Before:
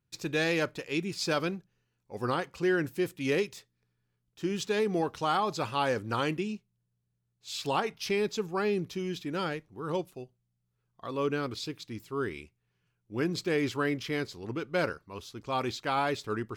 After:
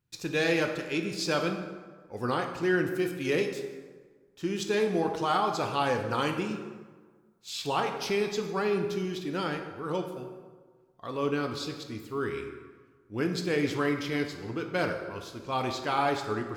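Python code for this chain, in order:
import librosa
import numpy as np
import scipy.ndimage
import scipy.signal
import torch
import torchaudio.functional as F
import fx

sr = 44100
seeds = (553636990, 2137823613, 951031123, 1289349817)

y = fx.high_shelf(x, sr, hz=10000.0, db=7.5, at=(6.2, 7.5))
y = fx.rev_plate(y, sr, seeds[0], rt60_s=1.5, hf_ratio=0.6, predelay_ms=0, drr_db=4.0)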